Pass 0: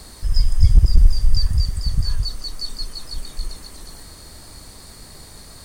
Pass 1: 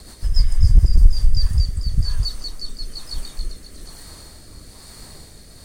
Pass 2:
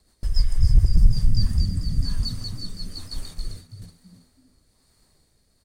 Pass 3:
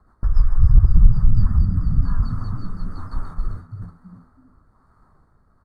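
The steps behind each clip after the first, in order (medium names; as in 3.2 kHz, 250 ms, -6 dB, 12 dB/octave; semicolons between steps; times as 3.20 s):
rotary cabinet horn 7 Hz, later 1.1 Hz, at 0.73 s; spectral replace 0.44–1.04 s, 1.1–4.2 kHz both; trim +1.5 dB
gate -33 dBFS, range -18 dB; on a send: frequency-shifting echo 326 ms, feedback 33%, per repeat +78 Hz, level -13.5 dB; on the sum: trim -4 dB
FFT filter 170 Hz 0 dB, 540 Hz -5 dB, 1.3 kHz +11 dB, 2.6 kHz -27 dB; in parallel at -2.5 dB: compression, threshold -25 dBFS, peak gain reduction 16 dB; on the sum: trim +2.5 dB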